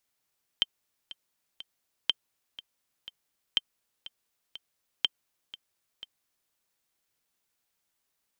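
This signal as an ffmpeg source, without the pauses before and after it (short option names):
-f lavfi -i "aevalsrc='pow(10,(-10-18*gte(mod(t,3*60/122),60/122))/20)*sin(2*PI*3130*mod(t,60/122))*exp(-6.91*mod(t,60/122)/0.03)':d=5.9:s=44100"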